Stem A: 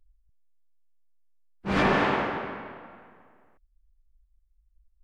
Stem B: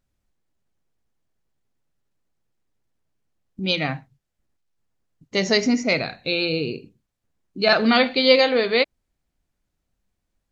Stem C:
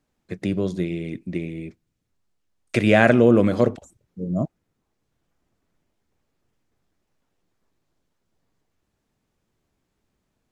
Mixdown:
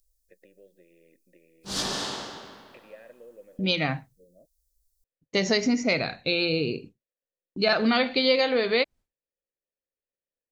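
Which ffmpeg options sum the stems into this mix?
-filter_complex "[0:a]aexciter=amount=11.4:drive=9.3:freq=3.7k,volume=-11dB[a];[1:a]agate=range=-33dB:threshold=-40dB:ratio=3:detection=peak,volume=0dB[b];[2:a]acompressor=threshold=-30dB:ratio=3,asplit=3[c][d][e];[c]bandpass=f=530:t=q:w=8,volume=0dB[f];[d]bandpass=f=1.84k:t=q:w=8,volume=-6dB[g];[e]bandpass=f=2.48k:t=q:w=8,volume=-9dB[h];[f][g][h]amix=inputs=3:normalize=0,volume=-10.5dB[i];[a][b][i]amix=inputs=3:normalize=0,acompressor=threshold=-21dB:ratio=2.5"

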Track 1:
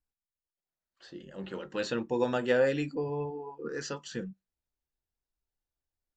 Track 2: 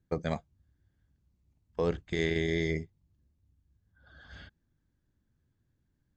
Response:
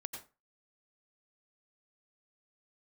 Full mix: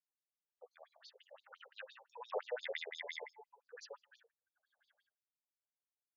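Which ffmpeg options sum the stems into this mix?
-filter_complex "[0:a]volume=-2.5dB,afade=t=out:st=1.33:d=0.65:silence=0.446684,asplit=3[a][b][c];[b]volume=-18dB[d];[1:a]adelay=500,volume=-2.5dB,asplit=2[e][f];[f]volume=-17.5dB[g];[c]apad=whole_len=293794[h];[e][h]sidechaingate=range=-31dB:threshold=-49dB:ratio=16:detection=peak[i];[2:a]atrim=start_sample=2205[j];[d][g]amix=inputs=2:normalize=0[k];[k][j]afir=irnorm=-1:irlink=0[l];[a][i][l]amix=inputs=3:normalize=0,afftfilt=real='re*between(b*sr/1024,600*pow(5200/600,0.5+0.5*sin(2*PI*5.8*pts/sr))/1.41,600*pow(5200/600,0.5+0.5*sin(2*PI*5.8*pts/sr))*1.41)':imag='im*between(b*sr/1024,600*pow(5200/600,0.5+0.5*sin(2*PI*5.8*pts/sr))/1.41,600*pow(5200/600,0.5+0.5*sin(2*PI*5.8*pts/sr))*1.41)':win_size=1024:overlap=0.75"

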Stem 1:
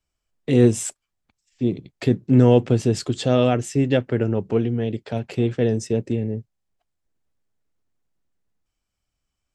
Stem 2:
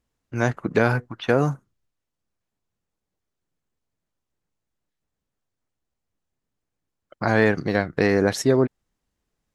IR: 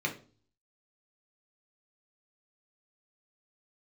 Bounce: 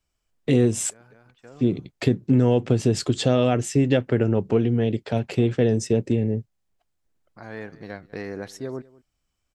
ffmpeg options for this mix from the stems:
-filter_complex "[0:a]acompressor=threshold=-17dB:ratio=6,volume=2.5dB,asplit=2[a][b];[1:a]adelay=150,volume=-14dB,asplit=2[c][d];[d]volume=-22dB[e];[b]apad=whole_len=431944[f];[c][f]sidechaincompress=threshold=-38dB:ratio=10:attack=16:release=1160[g];[e]aecho=0:1:198:1[h];[a][g][h]amix=inputs=3:normalize=0"

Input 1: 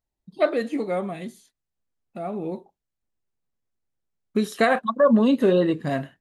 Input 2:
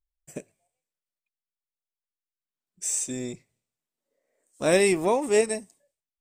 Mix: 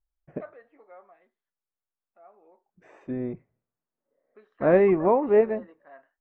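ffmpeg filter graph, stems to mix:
-filter_complex "[0:a]highpass=580,aemphasis=mode=production:type=riaa,volume=-17.5dB[a];[1:a]volume=2.5dB[b];[a][b]amix=inputs=2:normalize=0,lowpass=f=1.6k:w=0.5412,lowpass=f=1.6k:w=1.3066"

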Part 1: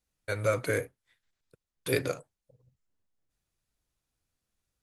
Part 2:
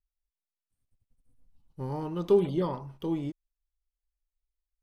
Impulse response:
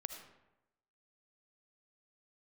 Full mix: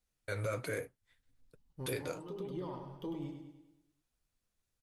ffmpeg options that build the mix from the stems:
-filter_complex "[0:a]alimiter=limit=-19dB:level=0:latency=1:release=395,volume=1.5dB,asplit=2[a][b];[1:a]acompressor=threshold=-31dB:ratio=5,volume=-2.5dB,asplit=2[c][d];[d]volume=-6.5dB[e];[b]apad=whole_len=212632[f];[c][f]sidechaincompress=threshold=-56dB:ratio=3:attack=22:release=207[g];[e]aecho=0:1:101|202|303|404|505|606|707:1|0.5|0.25|0.125|0.0625|0.0312|0.0156[h];[a][g][h]amix=inputs=3:normalize=0,flanger=delay=4:depth=8.2:regen=-53:speed=1.2:shape=triangular,alimiter=level_in=3dB:limit=-24dB:level=0:latency=1:release=48,volume=-3dB"

